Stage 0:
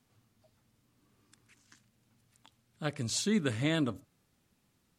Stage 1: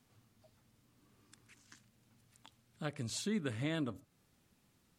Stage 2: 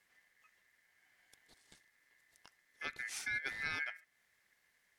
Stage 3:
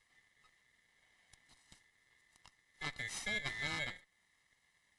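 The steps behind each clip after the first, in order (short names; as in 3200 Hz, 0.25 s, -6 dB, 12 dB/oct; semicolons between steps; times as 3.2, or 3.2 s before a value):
dynamic EQ 5800 Hz, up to -5 dB, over -52 dBFS, Q 1.1; compressor 1.5:1, threshold -48 dBFS, peak gain reduction 8.5 dB; gain +1 dB
ring modulator 1900 Hz
minimum comb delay 1 ms; gain +1.5 dB; AAC 96 kbps 24000 Hz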